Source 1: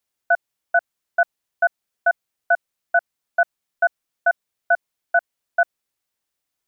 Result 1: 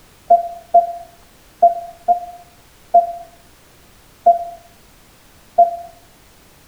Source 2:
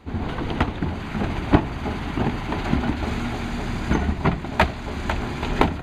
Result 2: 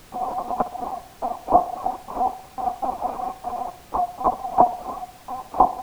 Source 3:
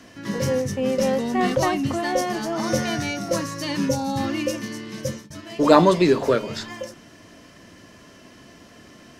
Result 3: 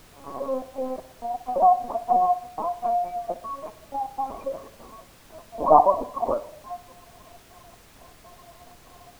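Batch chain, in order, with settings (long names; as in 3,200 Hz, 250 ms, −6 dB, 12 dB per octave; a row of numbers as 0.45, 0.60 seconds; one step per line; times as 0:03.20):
gate pattern ".xxxx.xx..x" 122 BPM −60 dB
formant resonators in series a
parametric band 250 Hz −9.5 dB 2.8 octaves
reverb whose tail is shaped and stops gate 390 ms falling, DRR 10.5 dB
linear-prediction vocoder at 8 kHz pitch kept
treble cut that deepens with the level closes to 1,100 Hz, closed at −35 dBFS
reverb reduction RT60 0.62 s
graphic EQ with 10 bands 125 Hz −10 dB, 250 Hz +11 dB, 500 Hz +6 dB, 2,000 Hz −5 dB
feedback echo with a band-pass in the loop 61 ms, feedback 53%, band-pass 600 Hz, level −14 dB
background noise pink −65 dBFS
normalise the peak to −2 dBFS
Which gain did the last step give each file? +17.5, +17.0, +13.5 decibels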